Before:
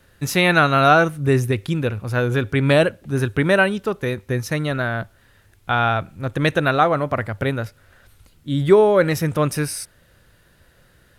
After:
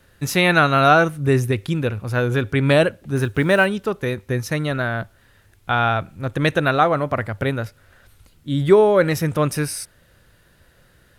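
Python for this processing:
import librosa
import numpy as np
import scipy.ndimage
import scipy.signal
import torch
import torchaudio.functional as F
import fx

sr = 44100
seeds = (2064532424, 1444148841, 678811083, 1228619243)

y = fx.block_float(x, sr, bits=7, at=(3.16, 3.69))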